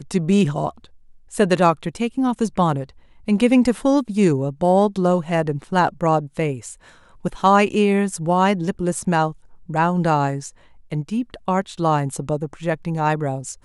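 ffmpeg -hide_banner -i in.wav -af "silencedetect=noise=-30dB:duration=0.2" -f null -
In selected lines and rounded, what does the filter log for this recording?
silence_start: 0.84
silence_end: 1.33 | silence_duration: 0.48
silence_start: 2.89
silence_end: 3.28 | silence_duration: 0.39
silence_start: 6.73
silence_end: 7.25 | silence_duration: 0.52
silence_start: 9.32
silence_end: 9.69 | silence_duration: 0.37
silence_start: 10.49
silence_end: 10.92 | silence_duration: 0.43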